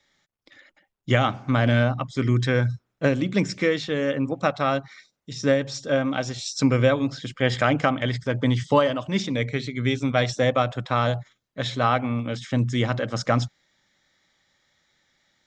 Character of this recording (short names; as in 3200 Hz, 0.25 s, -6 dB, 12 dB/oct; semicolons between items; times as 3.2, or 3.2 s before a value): noise floor -78 dBFS; spectral tilt -5.0 dB/oct